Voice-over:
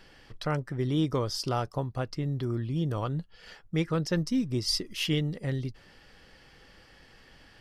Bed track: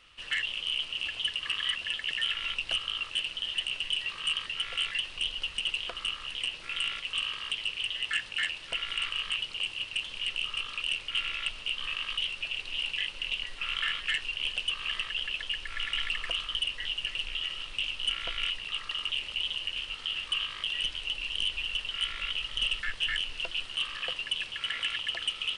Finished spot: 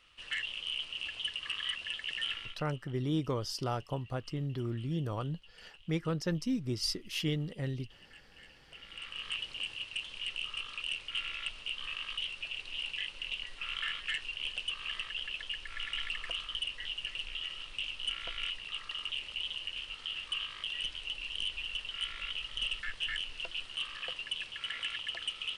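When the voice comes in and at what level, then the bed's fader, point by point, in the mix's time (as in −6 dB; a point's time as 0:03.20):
2.15 s, −5.0 dB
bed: 0:02.34 −5.5 dB
0:02.76 −26.5 dB
0:08.47 −26.5 dB
0:09.32 −5.5 dB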